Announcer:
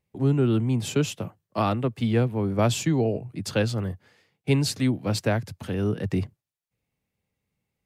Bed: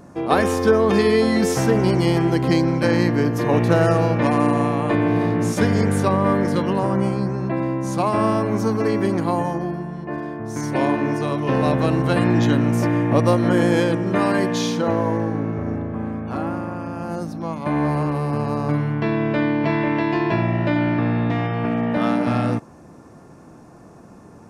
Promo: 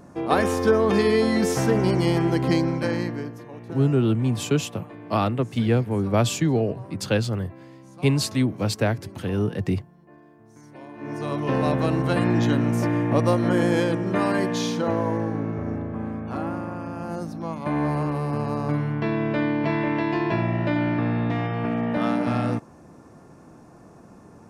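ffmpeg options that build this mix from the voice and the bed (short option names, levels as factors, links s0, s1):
-filter_complex "[0:a]adelay=3550,volume=1.19[s0];[1:a]volume=6.31,afade=t=out:st=2.52:d=0.94:silence=0.105925,afade=t=in:st=10.94:d=0.43:silence=0.112202[s1];[s0][s1]amix=inputs=2:normalize=0"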